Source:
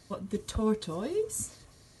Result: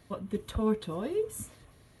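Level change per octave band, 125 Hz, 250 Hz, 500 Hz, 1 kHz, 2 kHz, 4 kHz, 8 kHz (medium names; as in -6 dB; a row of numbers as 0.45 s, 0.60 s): 0.0 dB, 0.0 dB, 0.0 dB, 0.0 dB, 0.0 dB, -3.5 dB, -8.0 dB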